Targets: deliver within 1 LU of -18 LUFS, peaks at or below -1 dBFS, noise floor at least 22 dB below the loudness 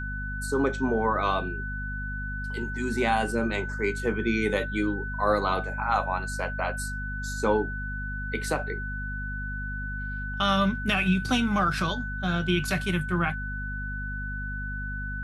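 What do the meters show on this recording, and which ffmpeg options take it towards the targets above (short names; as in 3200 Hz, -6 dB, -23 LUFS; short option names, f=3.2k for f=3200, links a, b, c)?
hum 50 Hz; harmonics up to 250 Hz; hum level -32 dBFS; steady tone 1500 Hz; tone level -34 dBFS; loudness -28.0 LUFS; peak -11.5 dBFS; loudness target -18.0 LUFS
-> -af "bandreject=f=50:t=h:w=4,bandreject=f=100:t=h:w=4,bandreject=f=150:t=h:w=4,bandreject=f=200:t=h:w=4,bandreject=f=250:t=h:w=4"
-af "bandreject=f=1.5k:w=30"
-af "volume=10dB"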